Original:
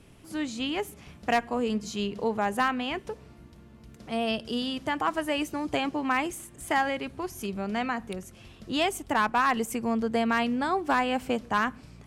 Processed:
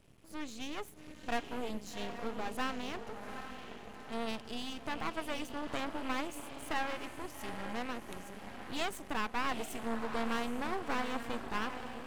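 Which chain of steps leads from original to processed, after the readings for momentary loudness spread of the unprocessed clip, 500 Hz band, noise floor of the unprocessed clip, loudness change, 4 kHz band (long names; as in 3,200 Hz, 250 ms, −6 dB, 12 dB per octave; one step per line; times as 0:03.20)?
10 LU, −10.5 dB, −52 dBFS, −10.5 dB, −8.5 dB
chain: feedback delay with all-pass diffusion 797 ms, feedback 51%, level −8.5 dB
half-wave rectification
level −6 dB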